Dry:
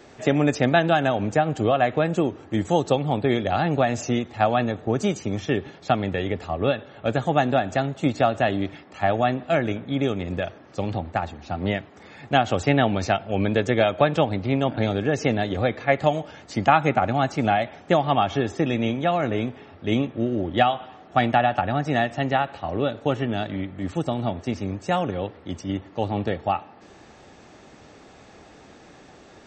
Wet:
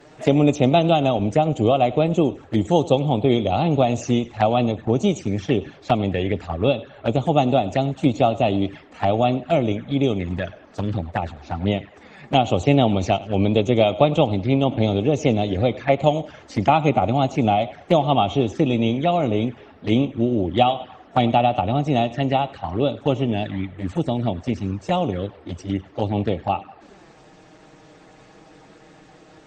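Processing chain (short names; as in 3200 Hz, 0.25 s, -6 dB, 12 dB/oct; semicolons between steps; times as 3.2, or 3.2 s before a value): thinning echo 99 ms, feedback 43%, high-pass 420 Hz, level -18 dB; envelope flanger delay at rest 7.8 ms, full sweep at -20.5 dBFS; gain +4.5 dB; Opus 24 kbps 48000 Hz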